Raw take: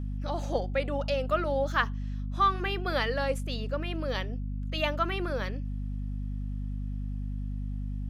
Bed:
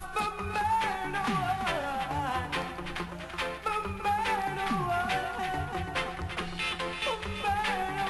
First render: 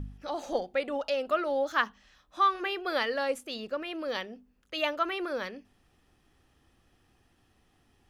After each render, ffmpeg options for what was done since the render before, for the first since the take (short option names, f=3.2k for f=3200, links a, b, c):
-af "bandreject=f=50:t=h:w=4,bandreject=f=100:t=h:w=4,bandreject=f=150:t=h:w=4,bandreject=f=200:t=h:w=4,bandreject=f=250:t=h:w=4"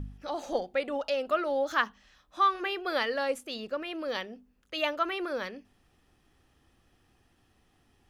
-filter_complex "[0:a]asettb=1/sr,asplit=3[a][b][c];[a]atrim=end=1.354[d];[b]atrim=start=1.35:end=1.84,asetpts=PTS-STARTPTS,afade=t=in:d=0.004:c=qsin,afade=t=out:st=0.486:d=0.004:c=qsin,acompressor=mode=upward:threshold=-30dB:ratio=2.5:attack=3.2:release=140:knee=2.83:detection=peak[e];[c]atrim=start=1.836[f];[d][e]acrossfade=d=0.004:c1=hsin:c2=qsin[g];[g][f]acrossfade=d=0.004:c1=qsin:c2=hsin"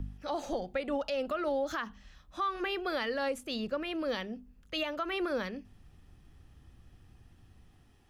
-filter_complex "[0:a]acrossover=split=180|840|2200[a][b][c][d];[a]dynaudnorm=f=180:g=5:m=13dB[e];[e][b][c][d]amix=inputs=4:normalize=0,alimiter=limit=-24dB:level=0:latency=1:release=130"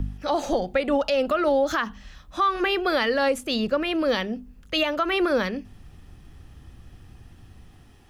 -af "volume=10.5dB"